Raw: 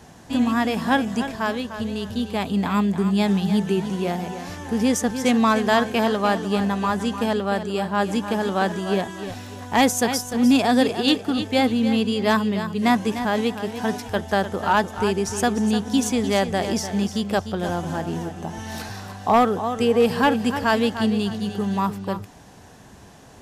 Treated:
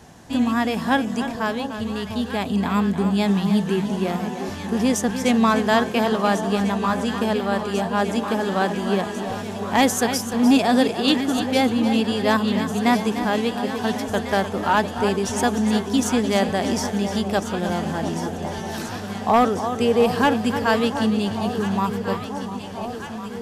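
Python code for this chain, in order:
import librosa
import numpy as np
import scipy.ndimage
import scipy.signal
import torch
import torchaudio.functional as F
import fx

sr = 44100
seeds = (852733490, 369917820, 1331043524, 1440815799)

y = fx.echo_alternate(x, sr, ms=698, hz=1000.0, feedback_pct=84, wet_db=-10.0)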